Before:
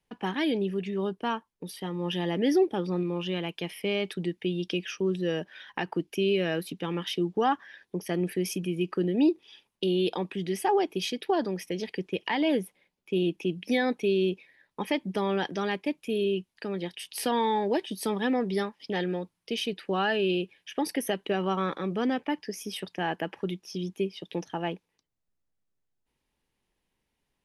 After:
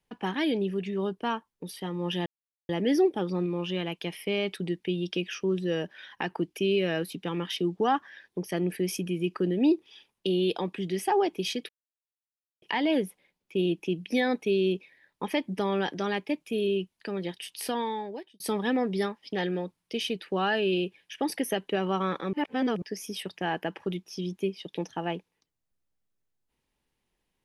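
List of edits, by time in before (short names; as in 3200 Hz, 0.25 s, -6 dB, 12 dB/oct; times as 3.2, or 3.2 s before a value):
2.26 insert silence 0.43 s
11.26–12.19 mute
17–17.97 fade out
21.9–22.39 reverse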